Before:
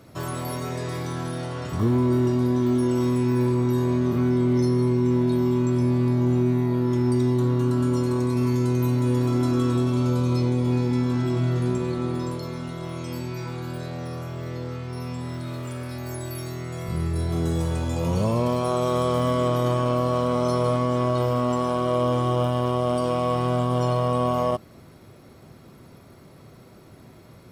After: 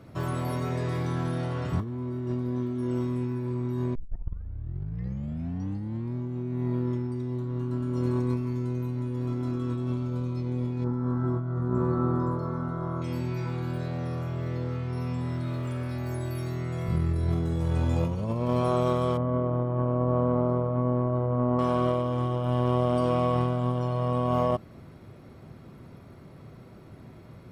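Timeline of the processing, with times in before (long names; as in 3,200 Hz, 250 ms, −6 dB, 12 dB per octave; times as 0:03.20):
0:03.95: tape start 2.20 s
0:10.84–0:13.02: high shelf with overshoot 1,800 Hz −11.5 dB, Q 3
0:19.17–0:21.59: low-pass filter 1,100 Hz
whole clip: bass and treble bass +4 dB, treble −9 dB; compressor whose output falls as the input rises −22 dBFS, ratio −0.5; level −4.5 dB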